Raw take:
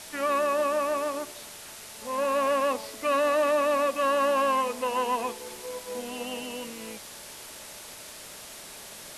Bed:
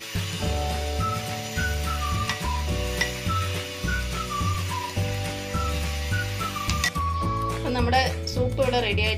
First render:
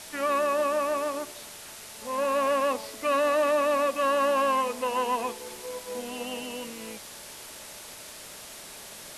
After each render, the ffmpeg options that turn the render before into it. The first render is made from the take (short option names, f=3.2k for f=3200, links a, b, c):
-af anull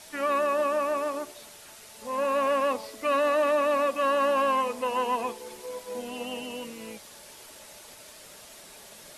-af "afftdn=nr=6:nf=-44"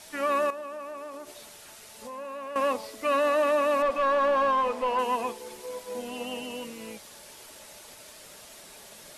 -filter_complex "[0:a]asettb=1/sr,asplit=3[a][b][c];[a]atrim=end=0.504[d];[b]atrim=start=0.5:end=2.56,asetpts=PTS-STARTPTS,afade=t=in:d=0.004:c=qsin,afade=t=out:st=2.056:d=0.004:c=qsin,acompressor=threshold=-37dB:ratio=4:attack=3.2:release=140:knee=1:detection=peak[e];[c]atrim=start=2.556[f];[d][e]acrossfade=d=0.004:c1=hsin:c2=qsin[g];[g][f]acrossfade=d=0.004:c1=qsin:c2=hsin,asettb=1/sr,asplit=3[h][i][j];[h]atrim=end=3.824[k];[i]atrim=start=3.82:end=4.99,asetpts=PTS-STARTPTS,afade=t=in:d=0.004:c=qsin,afade=t=out:st=1.166:d=0.004:c=qsin,asplit=2[l][m];[m]highpass=f=720:p=1,volume=14dB,asoftclip=type=tanh:threshold=-16.5dB[n];[l][n]amix=inputs=2:normalize=0,lowpass=f=1.3k:p=1,volume=-6dB[o];[j]atrim=start=4.986[p];[k][o]acrossfade=d=0.004:c1=hsin:c2=qsin[q];[q][p]acrossfade=d=0.004:c1=qsin:c2=hsin"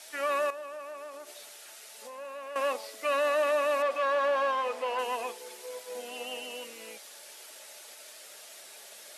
-af "highpass=530,equalizer=f=1k:t=o:w=0.43:g=-6.5"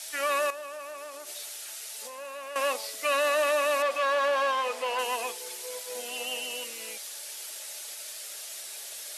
-af "highpass=170,highshelf=f=2.5k:g=10.5"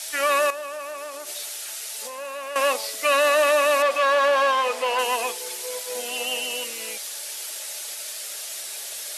-af "volume=6.5dB"